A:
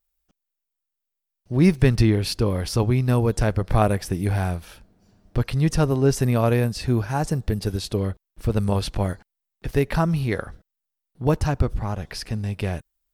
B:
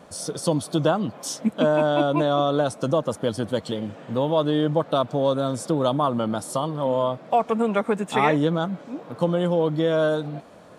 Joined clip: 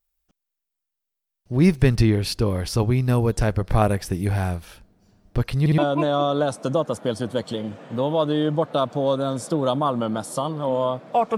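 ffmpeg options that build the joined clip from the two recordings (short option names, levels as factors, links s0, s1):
-filter_complex "[0:a]apad=whole_dur=11.37,atrim=end=11.37,asplit=3[s0][s1][s2];[s0]atrim=end=5.662[s3];[s1]atrim=start=5.598:end=5.662[s4];[s2]atrim=start=5.598:end=5.662[s5];[1:a]atrim=start=1.958:end=7.55[s6];[s3][s4]acrossfade=d=0.004:c1=hsin:c2=hsin[s7];[s7][s5]acrossfade=d=0.004:c1=hsin:c2=hsin[s8];[s8][s6]acrossfade=d=0.004:c1=hsin:c2=hsin"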